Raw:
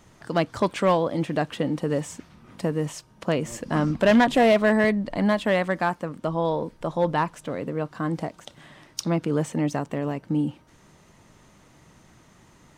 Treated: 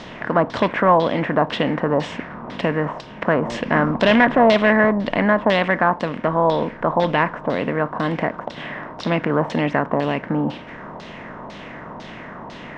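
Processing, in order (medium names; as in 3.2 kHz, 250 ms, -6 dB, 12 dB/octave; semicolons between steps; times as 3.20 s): spectral levelling over time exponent 0.6; LFO low-pass saw down 2 Hz 860–4400 Hz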